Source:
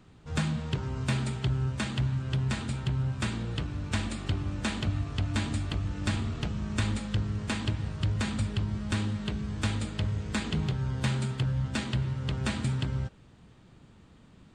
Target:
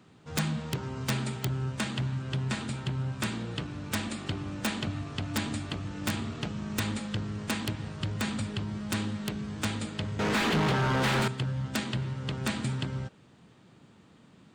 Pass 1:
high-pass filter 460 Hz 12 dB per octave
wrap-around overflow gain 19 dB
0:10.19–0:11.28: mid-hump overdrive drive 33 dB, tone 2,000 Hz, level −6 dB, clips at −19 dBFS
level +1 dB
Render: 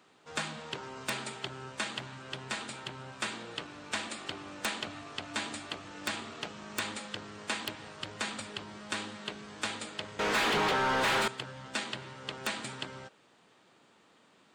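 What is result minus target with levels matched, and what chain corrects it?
125 Hz band −14.0 dB
high-pass filter 140 Hz 12 dB per octave
wrap-around overflow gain 19 dB
0:10.19–0:11.28: mid-hump overdrive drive 33 dB, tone 2,000 Hz, level −6 dB, clips at −19 dBFS
level +1 dB

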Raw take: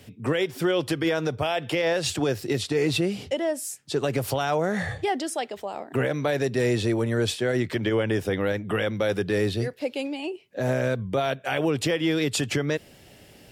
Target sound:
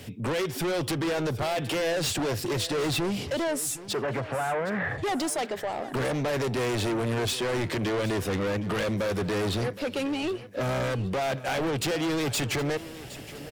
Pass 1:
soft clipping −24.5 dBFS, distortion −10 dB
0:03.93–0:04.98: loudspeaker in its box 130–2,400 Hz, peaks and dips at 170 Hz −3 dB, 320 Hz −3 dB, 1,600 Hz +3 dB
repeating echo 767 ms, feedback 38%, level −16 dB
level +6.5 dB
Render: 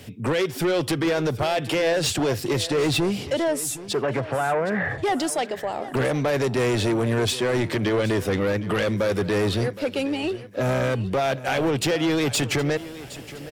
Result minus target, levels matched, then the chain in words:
soft clipping: distortion −5 dB
soft clipping −32 dBFS, distortion −5 dB
0:03.93–0:04.98: loudspeaker in its box 130–2,400 Hz, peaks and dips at 170 Hz −3 dB, 320 Hz −3 dB, 1,600 Hz +3 dB
repeating echo 767 ms, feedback 38%, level −16 dB
level +6.5 dB

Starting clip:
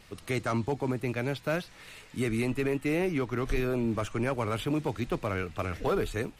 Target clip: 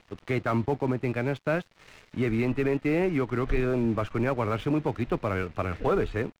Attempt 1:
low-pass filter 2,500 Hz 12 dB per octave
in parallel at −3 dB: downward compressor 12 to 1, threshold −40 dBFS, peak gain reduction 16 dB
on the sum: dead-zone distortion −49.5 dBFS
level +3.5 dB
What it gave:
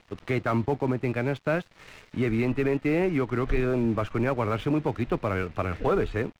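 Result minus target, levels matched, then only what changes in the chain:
downward compressor: peak gain reduction −11 dB
change: downward compressor 12 to 1, threshold −52 dBFS, peak gain reduction 27 dB

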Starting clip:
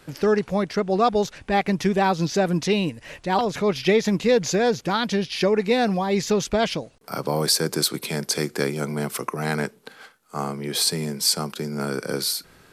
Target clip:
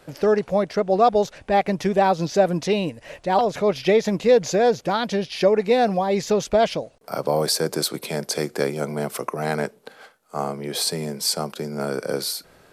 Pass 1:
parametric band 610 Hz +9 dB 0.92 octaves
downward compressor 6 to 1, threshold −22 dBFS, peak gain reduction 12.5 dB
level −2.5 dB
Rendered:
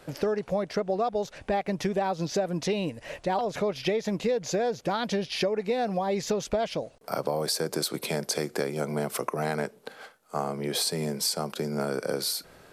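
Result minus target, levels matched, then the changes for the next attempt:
downward compressor: peak gain reduction +12.5 dB
remove: downward compressor 6 to 1, threshold −22 dBFS, peak gain reduction 12.5 dB

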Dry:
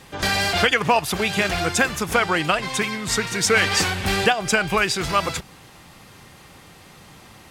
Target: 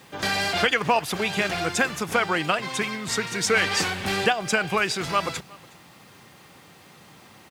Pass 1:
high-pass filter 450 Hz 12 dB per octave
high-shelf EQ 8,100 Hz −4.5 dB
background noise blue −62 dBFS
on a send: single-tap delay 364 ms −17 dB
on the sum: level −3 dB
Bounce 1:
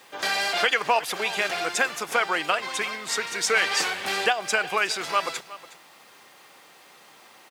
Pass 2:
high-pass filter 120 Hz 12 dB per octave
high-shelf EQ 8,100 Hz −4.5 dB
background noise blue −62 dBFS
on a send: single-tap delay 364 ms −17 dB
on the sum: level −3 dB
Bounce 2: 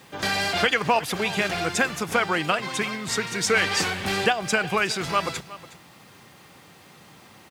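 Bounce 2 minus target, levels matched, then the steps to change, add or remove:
echo-to-direct +7 dB
change: single-tap delay 364 ms −24 dB

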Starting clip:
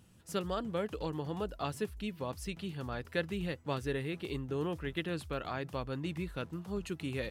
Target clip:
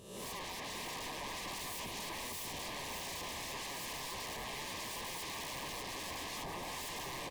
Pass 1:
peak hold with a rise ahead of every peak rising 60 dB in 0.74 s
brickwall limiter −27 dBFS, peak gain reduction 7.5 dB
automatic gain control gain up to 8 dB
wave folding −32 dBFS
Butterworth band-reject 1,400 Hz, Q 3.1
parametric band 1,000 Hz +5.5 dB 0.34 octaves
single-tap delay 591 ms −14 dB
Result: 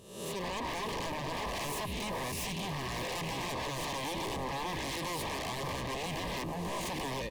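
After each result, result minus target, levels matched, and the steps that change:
wave folding: distortion −20 dB; echo-to-direct −7.5 dB
change: wave folding −39 dBFS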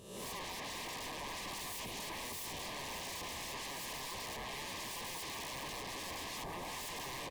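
echo-to-direct −7.5 dB
change: single-tap delay 591 ms −6.5 dB

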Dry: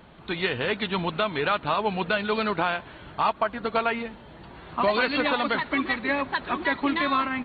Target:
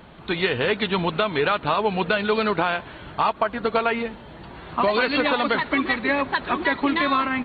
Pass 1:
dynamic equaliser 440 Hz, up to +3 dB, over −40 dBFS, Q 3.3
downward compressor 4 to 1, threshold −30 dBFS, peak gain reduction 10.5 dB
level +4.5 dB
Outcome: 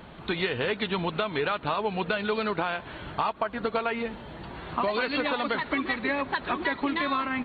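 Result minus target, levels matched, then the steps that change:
downward compressor: peak gain reduction +7 dB
change: downward compressor 4 to 1, threshold −21 dBFS, peak gain reduction 4 dB

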